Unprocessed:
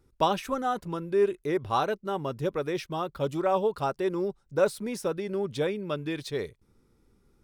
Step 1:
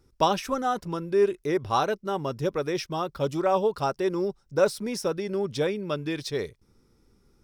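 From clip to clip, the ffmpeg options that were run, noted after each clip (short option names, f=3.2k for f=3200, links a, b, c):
-af "equalizer=f=5.4k:t=o:w=0.33:g=8.5,volume=2dB"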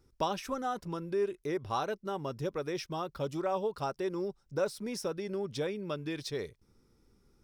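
-af "acompressor=threshold=-33dB:ratio=1.5,volume=-4dB"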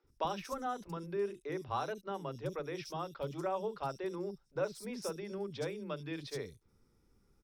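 -filter_complex "[0:a]acrossover=split=320|4500[a][b][c];[a]adelay=40[d];[c]adelay=70[e];[d][b][e]amix=inputs=3:normalize=0,volume=-3dB"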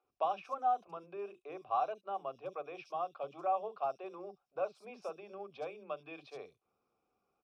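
-filter_complex "[0:a]asplit=3[a][b][c];[a]bandpass=f=730:t=q:w=8,volume=0dB[d];[b]bandpass=f=1.09k:t=q:w=8,volume=-6dB[e];[c]bandpass=f=2.44k:t=q:w=8,volume=-9dB[f];[d][e][f]amix=inputs=3:normalize=0,volume=10dB"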